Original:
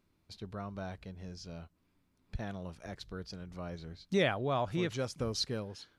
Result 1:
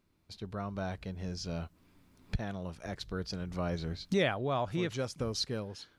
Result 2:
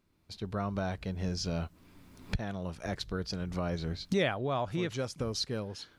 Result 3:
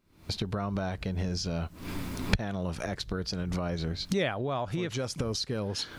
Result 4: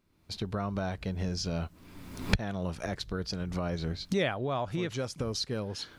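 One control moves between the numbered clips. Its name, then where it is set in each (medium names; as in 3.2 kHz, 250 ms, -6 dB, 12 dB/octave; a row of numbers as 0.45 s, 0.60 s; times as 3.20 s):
recorder AGC, rising by: 5.4 dB/s, 14 dB/s, 88 dB/s, 34 dB/s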